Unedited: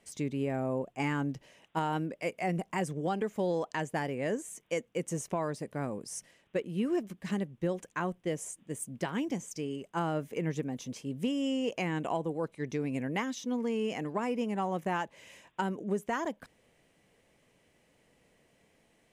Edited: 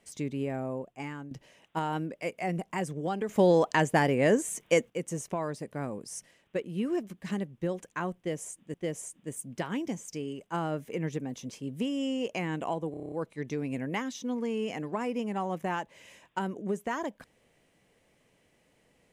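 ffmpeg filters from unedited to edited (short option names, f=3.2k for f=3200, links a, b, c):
-filter_complex "[0:a]asplit=12[a][b][c][d][e][f][g][h][i][j][k][l];[a]atrim=end=1.31,asetpts=PTS-STARTPTS,afade=t=out:st=0.42:d=0.89:silence=0.237137[m];[b]atrim=start=1.31:end=3.292,asetpts=PTS-STARTPTS,afade=t=in:d=0.004:c=hsin:silence=0.237137[n];[c]atrim=start=3.288:end=4.902,asetpts=PTS-STARTPTS,volume=9dB[o];[d]atrim=start=4.898:end=8.742[p];[e]atrim=start=8.168:end=12.372[q];[f]atrim=start=12.338:end=12.372[r];[g]atrim=start=12.338:end=12.372[s];[h]atrim=start=12.338:end=12.372[t];[i]atrim=start=12.338:end=12.372[u];[j]atrim=start=12.338:end=12.372[v];[k]atrim=start=12.338:end=12.372[w];[l]atrim=start=12.338[x];[m][n]concat=n=2:v=0:a=1[y];[y][o]acrossfade=d=0.004:c1=hsin:c2=hsin[z];[z][p]acrossfade=d=0.004:c1=hsin:c2=hsin[aa];[aa][q]acrossfade=d=0.004:c1=hsin:c2=hsin[ab];[ab][r]acrossfade=d=0.004:c1=hsin:c2=hsin[ac];[ac][s]acrossfade=d=0.004:c1=hsin:c2=hsin[ad];[ad][t]acrossfade=d=0.004:c1=hsin:c2=hsin[ae];[ae][u]acrossfade=d=0.004:c1=hsin:c2=hsin[af];[af][v]acrossfade=d=0.004:c1=hsin:c2=hsin[ag];[ag][w]acrossfade=d=0.004:c1=hsin:c2=hsin[ah];[ah][x]acrossfade=d=0.004:c1=hsin:c2=hsin"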